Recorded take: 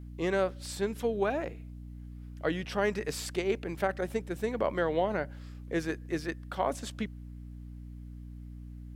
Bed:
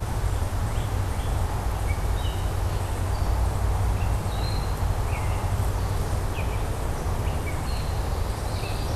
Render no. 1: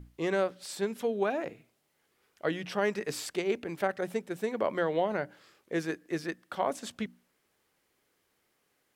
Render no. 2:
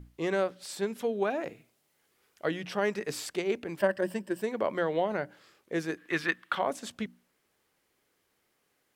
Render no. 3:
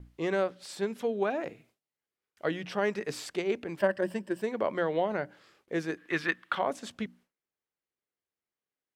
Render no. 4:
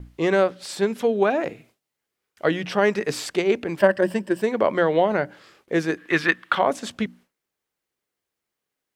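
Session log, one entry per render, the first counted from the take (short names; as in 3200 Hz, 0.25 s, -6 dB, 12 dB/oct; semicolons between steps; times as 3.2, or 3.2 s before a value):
notches 60/120/180/240/300 Hz
1.43–2.48 high shelf 4400 Hz +4.5 dB; 3.79–4.42 ripple EQ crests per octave 1.3, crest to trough 12 dB; 5.97–6.59 band shelf 1900 Hz +11.5 dB 2.3 oct
gate with hold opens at -52 dBFS; high shelf 8800 Hz -9.5 dB
gain +9.5 dB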